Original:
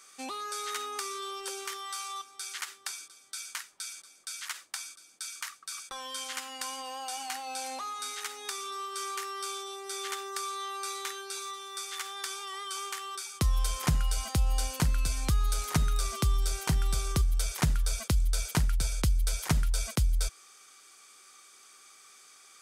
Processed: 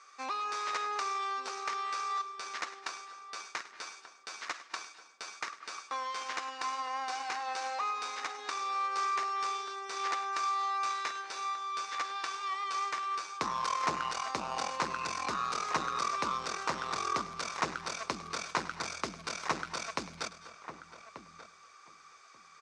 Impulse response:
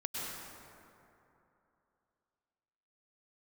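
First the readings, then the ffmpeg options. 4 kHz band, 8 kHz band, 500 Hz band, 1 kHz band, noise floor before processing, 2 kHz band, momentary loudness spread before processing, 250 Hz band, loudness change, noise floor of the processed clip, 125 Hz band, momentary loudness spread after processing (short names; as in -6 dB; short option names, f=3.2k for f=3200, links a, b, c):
-3.5 dB, -8.0 dB, -0.5 dB, +6.0 dB, -56 dBFS, +2.5 dB, 13 LU, -7.5 dB, -2.0 dB, -57 dBFS, -21.5 dB, 12 LU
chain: -filter_complex "[0:a]aeval=exprs='0.178*(cos(1*acos(clip(val(0)/0.178,-1,1)))-cos(1*PI/2))+0.0398*(cos(8*acos(clip(val(0)/0.178,-1,1)))-cos(8*PI/2))':c=same,highpass=450,equalizer=f=1.1k:t=q:w=4:g=8,equalizer=f=3.2k:t=q:w=4:g=-9,equalizer=f=4.6k:t=q:w=4:g=-4,lowpass=f=5.4k:w=0.5412,lowpass=f=5.4k:w=1.3066,asplit=2[a][b];[b]adelay=1185,lowpass=f=1.6k:p=1,volume=-11dB,asplit=2[c][d];[d]adelay=1185,lowpass=f=1.6k:p=1,volume=0.16[e];[a][c][e]amix=inputs=3:normalize=0,asplit=2[f][g];[1:a]atrim=start_sample=2205,afade=t=out:st=0.19:d=0.01,atrim=end_sample=8820,adelay=103[h];[g][h]afir=irnorm=-1:irlink=0,volume=-13.5dB[i];[f][i]amix=inputs=2:normalize=0"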